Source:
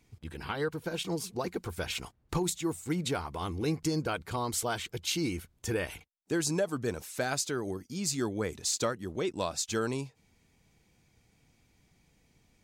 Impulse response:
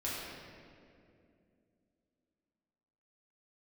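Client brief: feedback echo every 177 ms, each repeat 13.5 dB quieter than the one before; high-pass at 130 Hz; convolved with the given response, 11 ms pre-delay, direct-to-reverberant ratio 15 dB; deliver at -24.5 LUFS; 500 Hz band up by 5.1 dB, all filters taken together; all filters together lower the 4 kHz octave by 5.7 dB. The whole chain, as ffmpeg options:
-filter_complex "[0:a]highpass=130,equalizer=f=500:t=o:g=6.5,equalizer=f=4000:t=o:g=-7.5,aecho=1:1:177|354:0.211|0.0444,asplit=2[s0][s1];[1:a]atrim=start_sample=2205,adelay=11[s2];[s1][s2]afir=irnorm=-1:irlink=0,volume=0.112[s3];[s0][s3]amix=inputs=2:normalize=0,volume=2.11"

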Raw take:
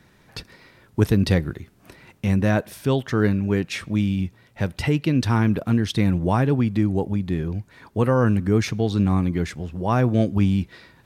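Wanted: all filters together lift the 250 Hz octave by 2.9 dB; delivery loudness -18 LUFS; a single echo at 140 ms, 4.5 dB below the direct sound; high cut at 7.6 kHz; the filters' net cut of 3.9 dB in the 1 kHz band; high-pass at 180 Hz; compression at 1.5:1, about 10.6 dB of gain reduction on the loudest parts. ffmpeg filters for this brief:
-af "highpass=180,lowpass=7600,equalizer=f=250:t=o:g=6,equalizer=f=1000:t=o:g=-5.5,acompressor=threshold=0.00631:ratio=1.5,aecho=1:1:140:0.596,volume=3.98"

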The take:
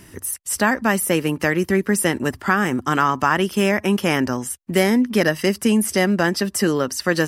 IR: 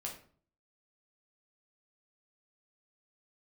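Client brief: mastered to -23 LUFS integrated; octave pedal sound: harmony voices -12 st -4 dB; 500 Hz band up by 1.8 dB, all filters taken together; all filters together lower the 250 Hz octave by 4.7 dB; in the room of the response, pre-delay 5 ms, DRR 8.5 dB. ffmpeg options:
-filter_complex "[0:a]equalizer=f=250:t=o:g=-8,equalizer=f=500:t=o:g=5,asplit=2[s0][s1];[1:a]atrim=start_sample=2205,adelay=5[s2];[s1][s2]afir=irnorm=-1:irlink=0,volume=0.422[s3];[s0][s3]amix=inputs=2:normalize=0,asplit=2[s4][s5];[s5]asetrate=22050,aresample=44100,atempo=2,volume=0.631[s6];[s4][s6]amix=inputs=2:normalize=0,volume=0.562"

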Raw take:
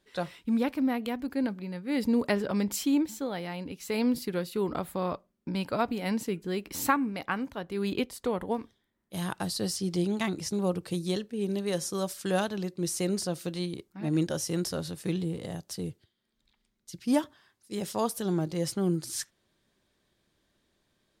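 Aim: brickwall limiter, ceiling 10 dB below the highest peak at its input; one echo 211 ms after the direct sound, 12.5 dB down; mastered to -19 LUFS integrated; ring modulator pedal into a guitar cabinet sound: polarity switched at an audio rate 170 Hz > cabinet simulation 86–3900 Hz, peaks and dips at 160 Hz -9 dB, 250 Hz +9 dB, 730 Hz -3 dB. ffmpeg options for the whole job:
-af "alimiter=limit=0.0841:level=0:latency=1,aecho=1:1:211:0.237,aeval=exprs='val(0)*sgn(sin(2*PI*170*n/s))':c=same,highpass=86,equalizer=f=160:t=q:w=4:g=-9,equalizer=f=250:t=q:w=4:g=9,equalizer=f=730:t=q:w=4:g=-3,lowpass=f=3900:w=0.5412,lowpass=f=3900:w=1.3066,volume=5.01"

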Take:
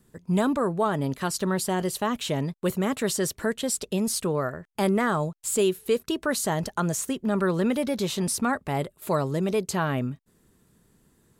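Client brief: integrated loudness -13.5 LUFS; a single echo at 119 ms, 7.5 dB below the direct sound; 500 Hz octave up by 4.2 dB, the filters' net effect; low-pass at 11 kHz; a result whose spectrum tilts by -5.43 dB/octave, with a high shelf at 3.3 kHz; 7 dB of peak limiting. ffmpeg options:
-af "lowpass=11000,equalizer=f=500:t=o:g=5.5,highshelf=f=3300:g=-3.5,alimiter=limit=0.158:level=0:latency=1,aecho=1:1:119:0.422,volume=3.98"

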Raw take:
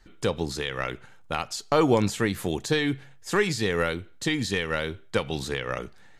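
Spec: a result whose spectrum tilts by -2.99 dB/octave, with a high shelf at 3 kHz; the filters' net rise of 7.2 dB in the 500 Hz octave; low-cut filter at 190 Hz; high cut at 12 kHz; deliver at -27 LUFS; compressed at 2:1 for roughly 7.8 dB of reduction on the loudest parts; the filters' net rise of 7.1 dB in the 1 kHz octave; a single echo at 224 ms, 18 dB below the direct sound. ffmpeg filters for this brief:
-af "highpass=190,lowpass=12000,equalizer=f=500:t=o:g=7,equalizer=f=1000:t=o:g=6.5,highshelf=f=3000:g=6.5,acompressor=threshold=0.0631:ratio=2,aecho=1:1:224:0.126"

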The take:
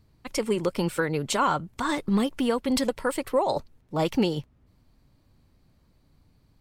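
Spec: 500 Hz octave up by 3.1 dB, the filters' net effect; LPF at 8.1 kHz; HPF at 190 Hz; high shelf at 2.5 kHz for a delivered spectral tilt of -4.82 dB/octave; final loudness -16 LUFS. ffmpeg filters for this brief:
-af "highpass=190,lowpass=8100,equalizer=f=500:t=o:g=4,highshelf=f=2500:g=-7,volume=3.16"

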